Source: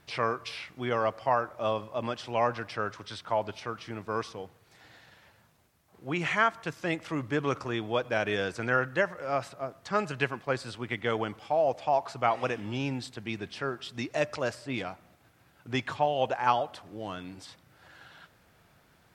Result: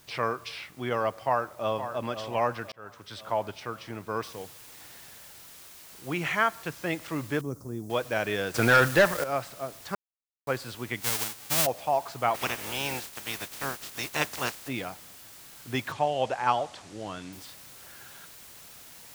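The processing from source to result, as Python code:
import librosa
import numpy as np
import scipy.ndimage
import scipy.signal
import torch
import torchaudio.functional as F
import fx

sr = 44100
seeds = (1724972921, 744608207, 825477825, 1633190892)

y = fx.echo_throw(x, sr, start_s=1.13, length_s=0.72, ms=520, feedback_pct=50, wet_db=-10.0)
y = fx.noise_floor_step(y, sr, seeds[0], at_s=4.23, before_db=-59, after_db=-49, tilt_db=0.0)
y = fx.curve_eq(y, sr, hz=(240.0, 1500.0, 2900.0, 6100.0), db=(0, -21, -30, -7), at=(7.41, 7.9))
y = fx.leveller(y, sr, passes=3, at=(8.54, 9.24))
y = fx.envelope_flatten(y, sr, power=0.1, at=(11.0, 11.65), fade=0.02)
y = fx.spec_clip(y, sr, under_db=22, at=(12.34, 14.67), fade=0.02)
y = fx.lowpass(y, sr, hz=8300.0, slope=24, at=(15.92, 17.33))
y = fx.edit(y, sr, fx.fade_in_span(start_s=2.72, length_s=0.49),
    fx.silence(start_s=9.95, length_s=0.52), tone=tone)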